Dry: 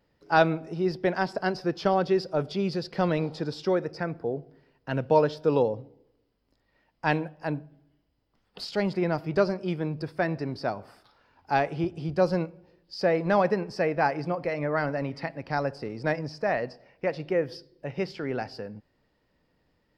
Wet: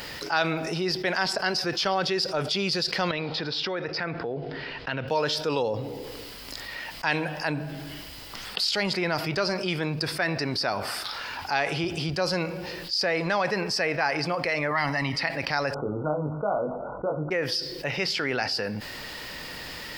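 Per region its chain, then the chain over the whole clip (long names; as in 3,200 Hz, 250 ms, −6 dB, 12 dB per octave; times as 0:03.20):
0:03.11–0:05.08: low-pass filter 4,200 Hz 24 dB per octave + downward compressor 2 to 1, threshold −45 dBFS
0:14.71–0:15.16: comb filter 1 ms, depth 79% + one half of a high-frequency compander decoder only
0:15.74–0:17.31: linear-phase brick-wall low-pass 1,500 Hz + double-tracking delay 20 ms −4 dB
whole clip: tilt shelving filter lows −9.5 dB, about 1,100 Hz; envelope flattener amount 70%; level −4 dB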